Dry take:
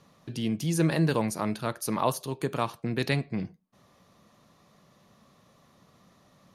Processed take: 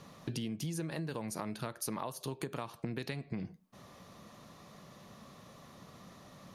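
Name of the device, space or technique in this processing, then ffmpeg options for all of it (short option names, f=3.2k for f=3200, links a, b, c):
serial compression, leveller first: -af "acompressor=threshold=-31dB:ratio=2.5,acompressor=threshold=-41dB:ratio=8,volume=6dB"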